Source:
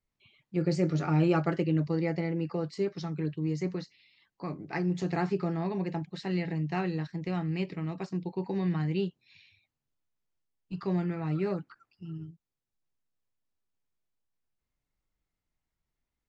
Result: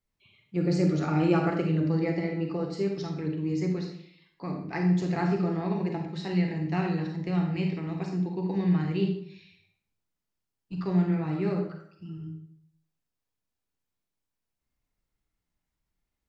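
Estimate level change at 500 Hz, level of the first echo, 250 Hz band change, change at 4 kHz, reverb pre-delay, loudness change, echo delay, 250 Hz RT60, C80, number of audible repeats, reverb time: +2.0 dB, no echo audible, +4.0 dB, +2.0 dB, 34 ms, +3.0 dB, no echo audible, 0.70 s, 8.0 dB, no echo audible, 0.65 s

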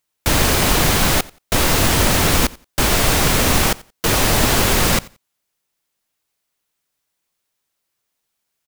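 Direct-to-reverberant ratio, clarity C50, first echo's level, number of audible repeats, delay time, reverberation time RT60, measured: no reverb audible, no reverb audible, −22.5 dB, 1, 88 ms, no reverb audible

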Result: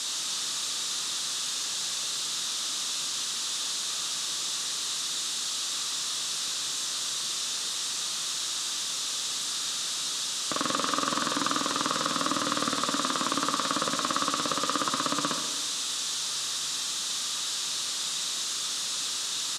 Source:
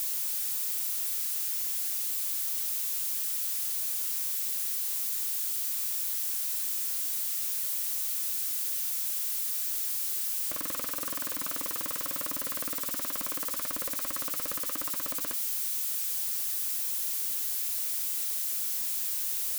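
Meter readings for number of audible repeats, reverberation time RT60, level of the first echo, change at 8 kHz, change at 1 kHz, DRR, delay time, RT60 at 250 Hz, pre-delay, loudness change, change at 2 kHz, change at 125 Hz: 1, 1.3 s, −11.5 dB, +4.0 dB, +14.5 dB, 5.0 dB, 130 ms, 1.4 s, 37 ms, +0.5 dB, +9.0 dB, can't be measured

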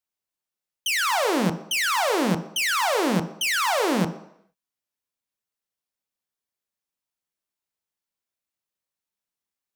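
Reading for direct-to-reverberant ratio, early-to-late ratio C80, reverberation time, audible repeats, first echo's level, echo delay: 8.0 dB, 15.0 dB, 0.70 s, no echo audible, no echo audible, no echo audible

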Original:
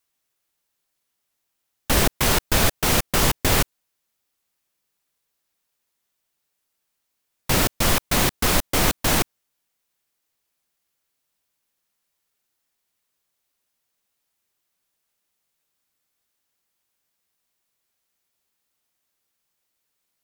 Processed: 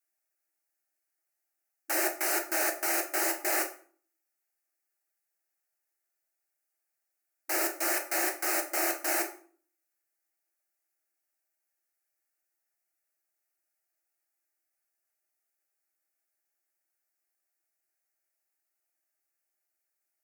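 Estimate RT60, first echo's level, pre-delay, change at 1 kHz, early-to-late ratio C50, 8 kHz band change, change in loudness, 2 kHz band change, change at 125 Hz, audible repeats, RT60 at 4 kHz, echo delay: 0.45 s, no echo audible, 6 ms, −8.5 dB, 11.0 dB, −7.5 dB, −8.0 dB, −6.5 dB, below −40 dB, no echo audible, 0.35 s, no echo audible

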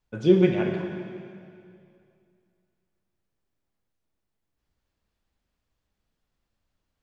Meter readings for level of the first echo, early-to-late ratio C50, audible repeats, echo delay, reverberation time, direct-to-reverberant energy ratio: no echo audible, 4.5 dB, no echo audible, no echo audible, 2.4 s, 4.0 dB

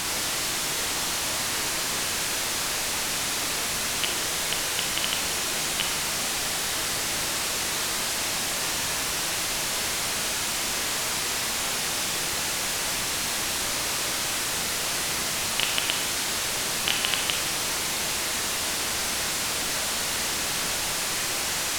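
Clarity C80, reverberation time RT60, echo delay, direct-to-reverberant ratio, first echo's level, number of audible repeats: 9.5 dB, 0.80 s, no echo audible, 3.5 dB, no echo audible, no echo audible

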